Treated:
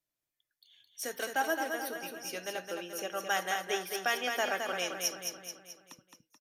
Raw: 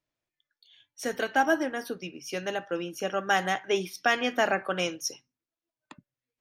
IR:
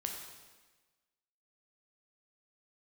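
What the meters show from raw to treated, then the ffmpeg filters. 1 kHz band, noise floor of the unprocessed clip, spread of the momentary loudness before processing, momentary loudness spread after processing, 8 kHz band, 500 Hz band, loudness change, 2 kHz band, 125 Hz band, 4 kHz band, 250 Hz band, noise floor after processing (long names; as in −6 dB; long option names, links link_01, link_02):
−6.0 dB, below −85 dBFS, 10 LU, 13 LU, +1.5 dB, −6.5 dB, −5.0 dB, −5.0 dB, −13.0 dB, −2.0 dB, −10.5 dB, below −85 dBFS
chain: -filter_complex "[0:a]aecho=1:1:216|432|648|864|1080|1296:0.531|0.271|0.138|0.0704|0.0359|0.0183,acrossover=split=320|5200[link_01][link_02][link_03];[link_01]acompressor=threshold=-46dB:ratio=6[link_04];[link_04][link_02][link_03]amix=inputs=3:normalize=0,aemphasis=mode=production:type=50fm,acrusher=bits=7:mode=log:mix=0:aa=0.000001,aresample=32000,aresample=44100,volume=-7dB"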